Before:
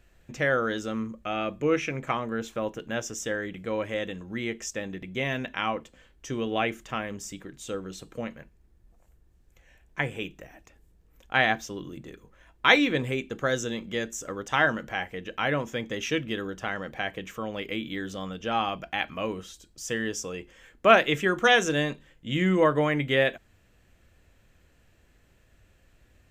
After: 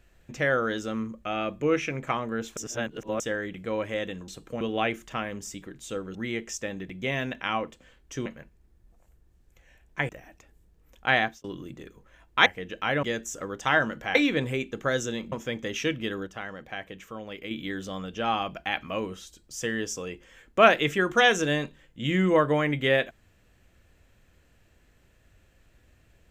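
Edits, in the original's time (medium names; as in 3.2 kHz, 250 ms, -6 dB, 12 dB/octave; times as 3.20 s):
2.57–3.20 s: reverse
4.28–6.39 s: swap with 7.93–8.26 s
10.09–10.36 s: delete
11.46–11.71 s: fade out
12.73–13.90 s: swap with 15.02–15.59 s
16.54–17.78 s: gain -5.5 dB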